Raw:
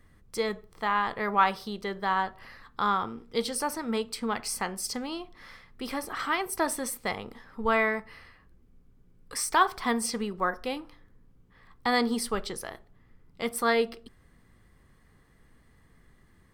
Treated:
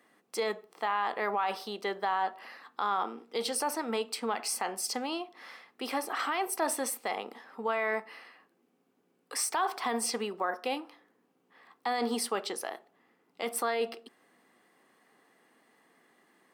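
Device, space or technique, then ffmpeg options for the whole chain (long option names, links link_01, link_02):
laptop speaker: -af "highpass=frequency=260:width=0.5412,highpass=frequency=260:width=1.3066,equalizer=frequency=750:width_type=o:width=0.49:gain=7,equalizer=frequency=2700:width_type=o:width=0.24:gain=5,alimiter=limit=-20.5dB:level=0:latency=1:release=28"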